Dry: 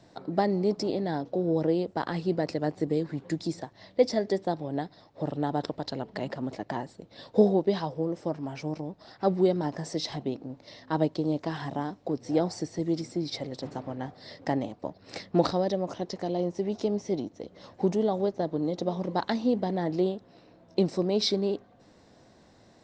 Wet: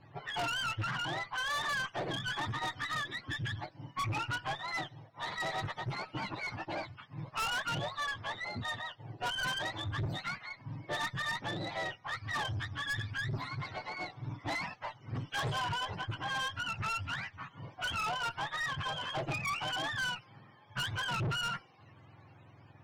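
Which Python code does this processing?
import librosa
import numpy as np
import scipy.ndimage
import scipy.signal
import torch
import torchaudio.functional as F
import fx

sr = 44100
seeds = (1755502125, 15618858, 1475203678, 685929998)

y = fx.octave_mirror(x, sr, pivot_hz=750.0)
y = fx.env_lowpass(y, sr, base_hz=2500.0, full_db=-24.0)
y = fx.tube_stage(y, sr, drive_db=33.0, bias=0.25)
y = y * 10.0 ** (1.5 / 20.0)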